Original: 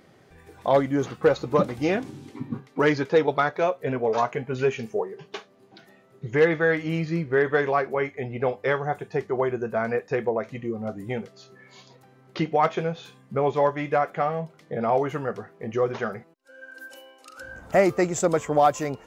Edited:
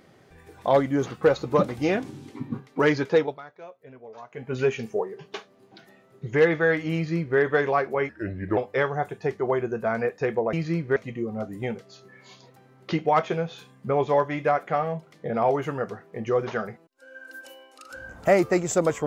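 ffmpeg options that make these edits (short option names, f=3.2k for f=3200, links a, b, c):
-filter_complex "[0:a]asplit=7[a][b][c][d][e][f][g];[a]atrim=end=3.39,asetpts=PTS-STARTPTS,afade=t=out:st=3.15:d=0.24:silence=0.1[h];[b]atrim=start=3.39:end=4.3,asetpts=PTS-STARTPTS,volume=-20dB[i];[c]atrim=start=4.3:end=8.094,asetpts=PTS-STARTPTS,afade=t=in:d=0.24:silence=0.1[j];[d]atrim=start=8.09:end=8.47,asetpts=PTS-STARTPTS,asetrate=34839,aresample=44100[k];[e]atrim=start=8.466:end=10.432[l];[f]atrim=start=6.948:end=7.382[m];[g]atrim=start=10.428[n];[h][i][j]concat=n=3:v=0:a=1[o];[o][k]acrossfade=d=0.004:c1=hsin:c2=hsin[p];[p][l]acrossfade=d=0.004:c1=hsin:c2=hsin[q];[q][m]acrossfade=d=0.004:c1=hsin:c2=hsin[r];[r][n]acrossfade=d=0.004:c1=hsin:c2=hsin"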